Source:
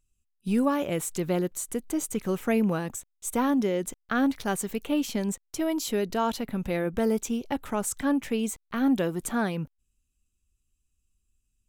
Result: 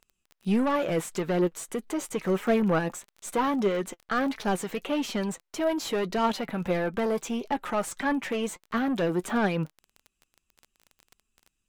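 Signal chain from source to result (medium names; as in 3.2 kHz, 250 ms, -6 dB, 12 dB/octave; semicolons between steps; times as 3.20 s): overdrive pedal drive 21 dB, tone 1.8 kHz, clips at -12.5 dBFS; flange 1.6 Hz, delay 4.4 ms, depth 2.1 ms, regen +48%; crackle 19 per s -36 dBFS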